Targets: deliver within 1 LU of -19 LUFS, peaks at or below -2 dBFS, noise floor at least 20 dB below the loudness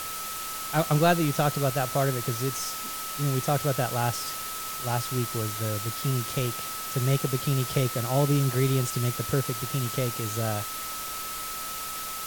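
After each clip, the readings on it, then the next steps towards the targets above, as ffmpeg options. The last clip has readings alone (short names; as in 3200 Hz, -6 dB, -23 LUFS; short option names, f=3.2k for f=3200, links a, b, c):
steady tone 1300 Hz; tone level -37 dBFS; noise floor -35 dBFS; noise floor target -48 dBFS; loudness -27.5 LUFS; peak -9.5 dBFS; loudness target -19.0 LUFS
-> -af "bandreject=f=1.3k:w=30"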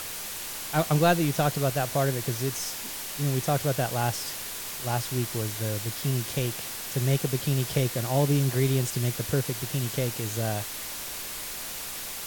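steady tone none; noise floor -36 dBFS; noise floor target -48 dBFS
-> -af "afftdn=nr=12:nf=-36"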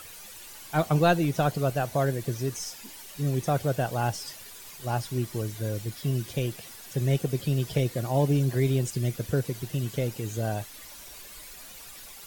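noise floor -45 dBFS; noise floor target -48 dBFS
-> -af "afftdn=nr=6:nf=-45"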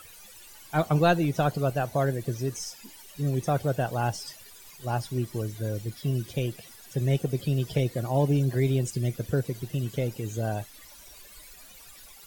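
noise floor -50 dBFS; loudness -28.5 LUFS; peak -10.0 dBFS; loudness target -19.0 LUFS
-> -af "volume=9.5dB,alimiter=limit=-2dB:level=0:latency=1"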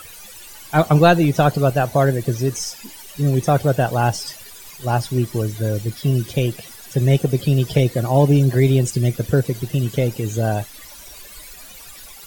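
loudness -19.0 LUFS; peak -2.0 dBFS; noise floor -40 dBFS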